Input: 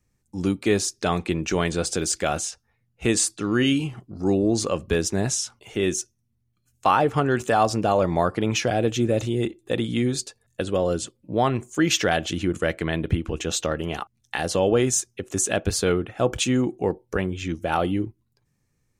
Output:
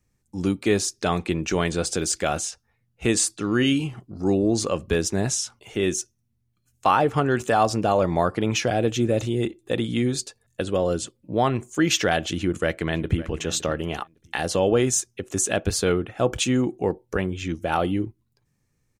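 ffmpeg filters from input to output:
-filter_complex "[0:a]asplit=2[a][b];[b]afade=t=in:st=12.31:d=0.01,afade=t=out:st=13.2:d=0.01,aecho=0:1:560|1120:0.141254|0.0211881[c];[a][c]amix=inputs=2:normalize=0"

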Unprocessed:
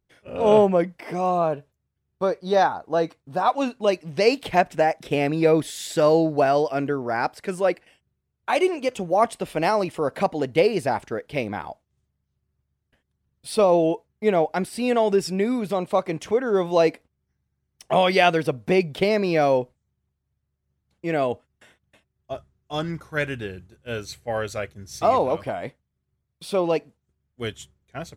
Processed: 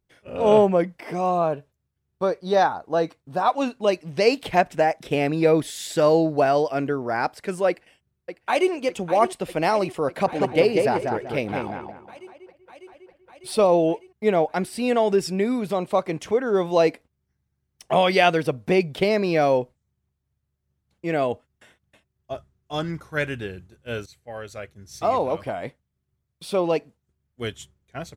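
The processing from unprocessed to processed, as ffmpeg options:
-filter_complex "[0:a]asplit=2[a][b];[b]afade=t=in:st=7.68:d=0.01,afade=t=out:st=8.72:d=0.01,aecho=0:1:600|1200|1800|2400|3000|3600|4200|4800|5400|6000|6600|7200:0.298538|0.223904|0.167928|0.125946|0.0944594|0.0708445|0.0531334|0.03985|0.0298875|0.0224157|0.0168117|0.0126088[c];[a][c]amix=inputs=2:normalize=0,asettb=1/sr,asplit=3[d][e][f];[d]atrim=end=10.084[g];[e]atrim=start=10.08:end=13.67,asetpts=PTS-STARTPTS,afade=t=in:d=0.004:c=qsin,afade=t=out:st=3.586:d=0.004:c=qsin,asplit=2[h][i];[i]adelay=192,lowpass=f=2.2k:p=1,volume=-3.5dB,asplit=2[j][k];[k]adelay=192,lowpass=f=2.2k:p=1,volume=0.31,asplit=2[l][m];[m]adelay=192,lowpass=f=2.2k:p=1,volume=0.31,asplit=2[n][o];[o]adelay=192,lowpass=f=2.2k:p=1,volume=0.31[p];[h][j][l][n][p]amix=inputs=5:normalize=0,atrim=end_sample=158319[q];[f]atrim=start=13.666[r];[g][q]acrossfade=d=0.004:c1=hsin:c2=qsin[s];[s][r]acrossfade=d=0.004:c1=qsin:c2=hsin,asplit=2[t][u];[t]atrim=end=24.06,asetpts=PTS-STARTPTS,afade=t=out:st=24.056:d=0.004:c=hsin:silence=0.199526[v];[u]atrim=start=24.06,asetpts=PTS-STARTPTS,afade=t=in:d=1.57:silence=0.199526[w];[v][w]concat=n=2:v=0:a=1"

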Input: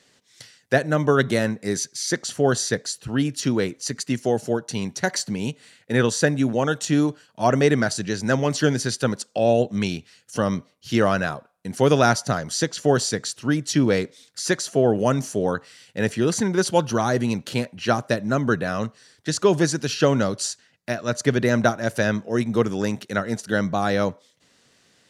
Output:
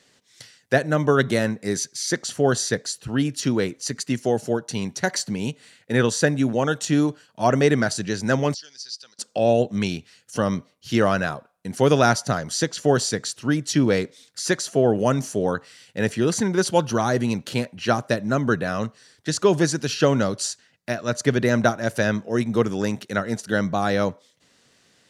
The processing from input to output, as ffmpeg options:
-filter_complex "[0:a]asettb=1/sr,asplit=3[a][b][c];[a]atrim=end=8.544[d];[b]atrim=start=8.54:end=9.19,asetpts=PTS-STARTPTS,afade=t=in:d=0.004:c=qsin,afade=t=out:st=0.646:d=0.004:c=qsin,bandpass=f=4.9k:t=q:w=5.8[e];[c]atrim=start=9.186[f];[d][e]acrossfade=d=0.004:c1=hsin:c2=qsin[g];[g][f]acrossfade=d=0.004:c1=qsin:c2=hsin"

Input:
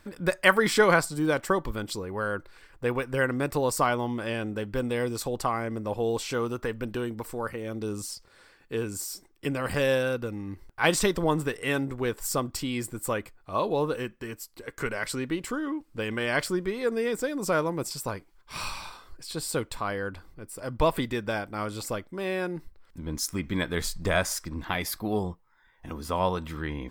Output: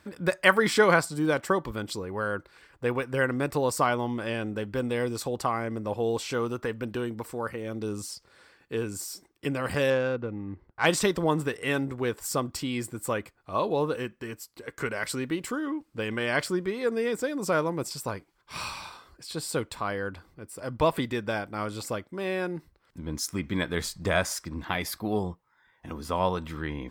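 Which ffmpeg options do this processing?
-filter_complex "[0:a]asettb=1/sr,asplit=3[a][b][c];[a]atrim=end=9.904[d];[b]atrim=start=9.9:end=10.86,asetpts=PTS-STARTPTS,afade=t=in:d=0.004:c=qsin,afade=t=out:st=0.956:d=0.004:c=qsin,adynamicsmooth=sensitivity=1.5:basefreq=1.8k[e];[c]atrim=start=10.856[f];[d][e]acrossfade=d=0.004:c1=hsin:c2=qsin[g];[g][f]acrossfade=d=0.004:c1=qsin:c2=hsin,asettb=1/sr,asplit=3[h][i][j];[h]atrim=end=14.964[k];[i]atrim=start=14.96:end=15.67,asetpts=PTS-STARTPTS,afade=t=in:d=0.004:c=qsin,afade=t=out:st=0.706:d=0.004:c=qsin,highshelf=f=9.9k:g=6.5[l];[j]atrim=start=15.666[m];[k][l]acrossfade=d=0.004:c1=hsin:c2=qsin[n];[n][m]acrossfade=d=0.004:c1=qsin:c2=hsin,highpass=63,highshelf=f=10k:g=-5"

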